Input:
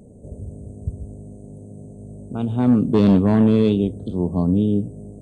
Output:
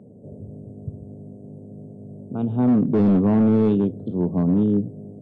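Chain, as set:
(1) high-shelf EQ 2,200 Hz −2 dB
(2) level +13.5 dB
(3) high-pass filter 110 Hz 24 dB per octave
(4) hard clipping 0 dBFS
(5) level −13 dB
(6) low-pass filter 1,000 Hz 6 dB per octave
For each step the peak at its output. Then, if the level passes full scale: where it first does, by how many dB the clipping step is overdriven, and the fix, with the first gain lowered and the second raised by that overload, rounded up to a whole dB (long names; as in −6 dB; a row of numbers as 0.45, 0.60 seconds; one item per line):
−8.5, +5.0, +7.5, 0.0, −13.0, −13.0 dBFS
step 2, 7.5 dB
step 2 +5.5 dB, step 5 −5 dB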